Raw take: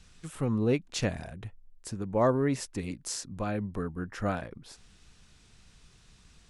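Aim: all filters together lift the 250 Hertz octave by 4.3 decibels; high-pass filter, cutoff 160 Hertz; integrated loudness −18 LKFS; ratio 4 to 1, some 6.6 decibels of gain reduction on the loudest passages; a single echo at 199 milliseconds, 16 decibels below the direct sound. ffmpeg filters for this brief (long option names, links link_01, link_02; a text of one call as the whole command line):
ffmpeg -i in.wav -af "highpass=160,equalizer=frequency=250:width_type=o:gain=6,acompressor=threshold=-26dB:ratio=4,aecho=1:1:199:0.158,volume=15.5dB" out.wav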